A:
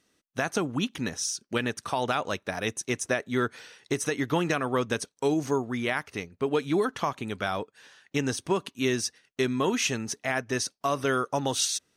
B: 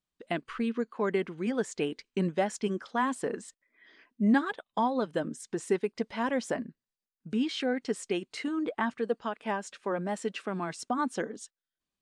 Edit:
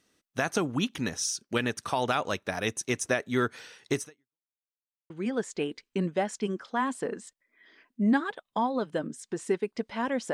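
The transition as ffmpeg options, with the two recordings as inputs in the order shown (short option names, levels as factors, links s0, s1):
-filter_complex "[0:a]apad=whole_dur=10.33,atrim=end=10.33,asplit=2[s0][s1];[s0]atrim=end=4.45,asetpts=PTS-STARTPTS,afade=t=out:st=3.99:d=0.46:c=exp[s2];[s1]atrim=start=4.45:end=5.1,asetpts=PTS-STARTPTS,volume=0[s3];[1:a]atrim=start=1.31:end=6.54,asetpts=PTS-STARTPTS,afade=t=in:d=0.004:c=hsin[s4];[s2][s3][s4]concat=n=3:v=0:a=1"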